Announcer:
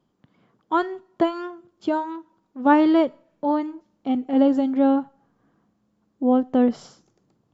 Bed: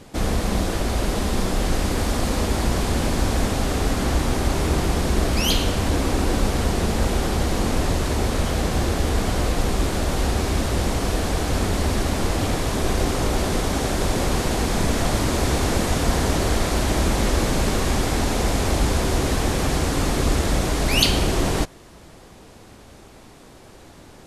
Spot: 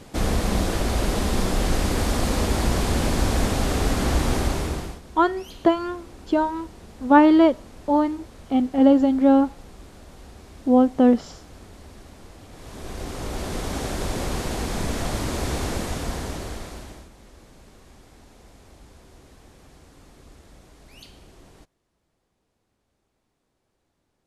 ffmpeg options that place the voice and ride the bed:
-filter_complex "[0:a]adelay=4450,volume=2.5dB[a];[1:a]volume=17dB,afade=t=out:st=4.36:d=0.64:silence=0.0749894,afade=t=in:st=12.5:d=1.27:silence=0.133352,afade=t=out:st=15.62:d=1.47:silence=0.0668344[b];[a][b]amix=inputs=2:normalize=0"

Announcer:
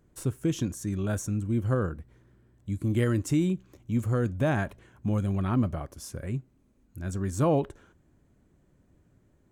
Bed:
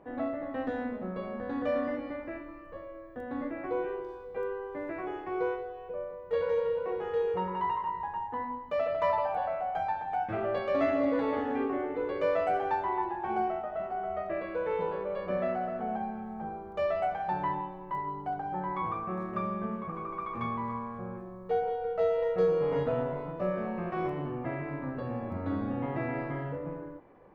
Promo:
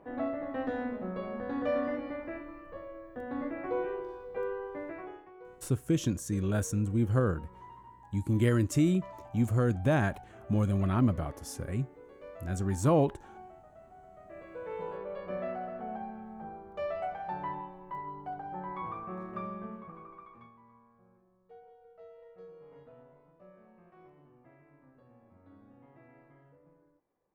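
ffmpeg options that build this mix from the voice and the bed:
-filter_complex "[0:a]adelay=5450,volume=-0.5dB[a];[1:a]volume=14dB,afade=t=out:st=4.65:d=0.68:silence=0.105925,afade=t=in:st=14.18:d=0.79:silence=0.188365,afade=t=out:st=19.41:d=1.11:silence=0.105925[b];[a][b]amix=inputs=2:normalize=0"

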